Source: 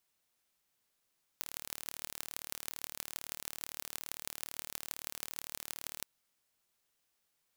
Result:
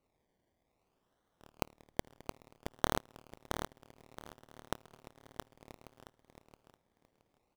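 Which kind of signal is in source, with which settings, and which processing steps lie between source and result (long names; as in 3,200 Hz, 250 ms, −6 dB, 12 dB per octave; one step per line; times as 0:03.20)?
impulse train 37.7 per second, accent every 6, −9.5 dBFS 4.63 s
parametric band 180 Hz −9.5 dB 2.9 octaves
sample-and-hold swept by an LFO 26×, swing 60% 0.6 Hz
repeating echo 671 ms, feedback 23%, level −5.5 dB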